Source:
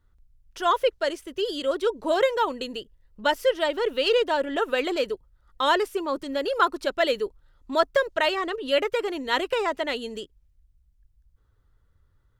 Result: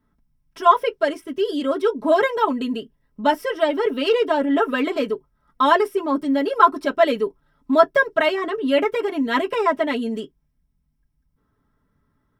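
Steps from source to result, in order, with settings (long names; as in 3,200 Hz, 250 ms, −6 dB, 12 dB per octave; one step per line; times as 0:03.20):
high-shelf EQ 3,200 Hz +10 dB
convolution reverb, pre-delay 3 ms, DRR −3.5 dB
level −10.5 dB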